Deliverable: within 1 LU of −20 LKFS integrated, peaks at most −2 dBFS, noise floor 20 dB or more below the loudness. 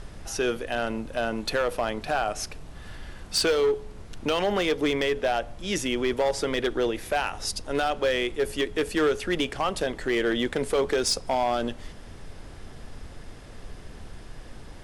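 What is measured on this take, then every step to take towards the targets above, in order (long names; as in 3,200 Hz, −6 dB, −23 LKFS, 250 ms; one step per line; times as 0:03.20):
share of clipped samples 1.4%; peaks flattened at −18.0 dBFS; background noise floor −44 dBFS; target noise floor −47 dBFS; integrated loudness −26.5 LKFS; sample peak −18.0 dBFS; target loudness −20.0 LKFS
→ clipped peaks rebuilt −18 dBFS
noise reduction from a noise print 6 dB
level +6.5 dB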